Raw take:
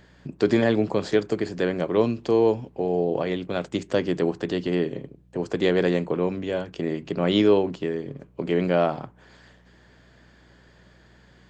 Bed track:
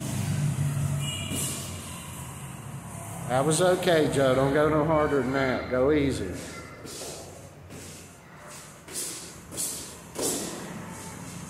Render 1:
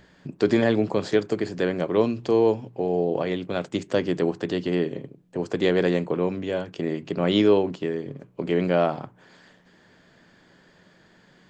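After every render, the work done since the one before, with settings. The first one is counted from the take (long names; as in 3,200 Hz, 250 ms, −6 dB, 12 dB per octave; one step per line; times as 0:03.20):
hum removal 60 Hz, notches 2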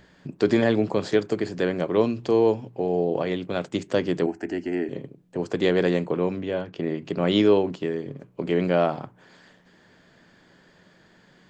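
0:04.26–0:04.89: phaser with its sweep stopped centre 740 Hz, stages 8
0:06.41–0:07.02: high-frequency loss of the air 110 metres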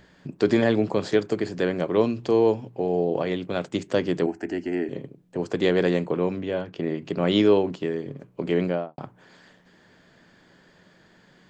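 0:08.57–0:08.98: fade out and dull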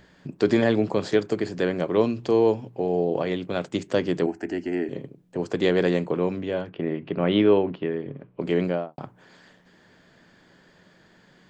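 0:06.69–0:08.41: low-pass filter 3,200 Hz 24 dB per octave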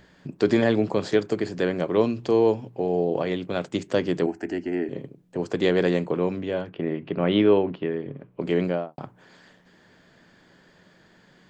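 0:04.58–0:04.98: high-shelf EQ 4,200 Hz −6.5 dB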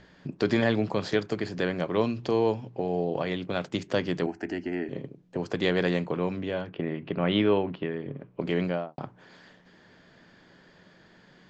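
low-pass filter 6,500 Hz 24 dB per octave
dynamic equaliser 380 Hz, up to −6 dB, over −31 dBFS, Q 0.87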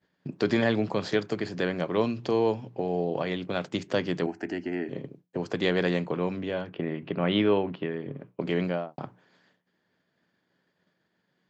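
high-pass filter 94 Hz
downward expander −44 dBFS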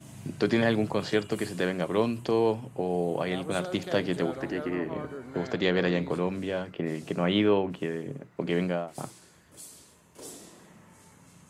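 mix in bed track −15.5 dB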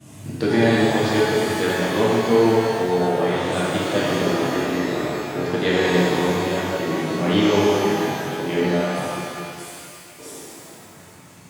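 feedback echo with a band-pass in the loop 319 ms, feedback 74%, band-pass 2,400 Hz, level −12 dB
reverb with rising layers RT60 2.2 s, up +12 semitones, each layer −8 dB, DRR −7 dB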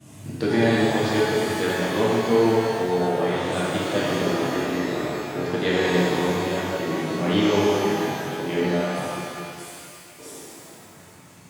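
level −2.5 dB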